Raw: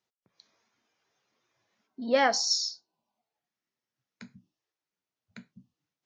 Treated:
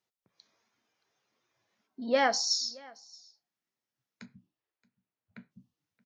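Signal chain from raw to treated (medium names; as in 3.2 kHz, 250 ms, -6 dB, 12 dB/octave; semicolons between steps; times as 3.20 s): 4.25–5.50 s: low-pass 3.9 kHz -> 2.3 kHz 12 dB/octave; delay 624 ms -24 dB; trim -2 dB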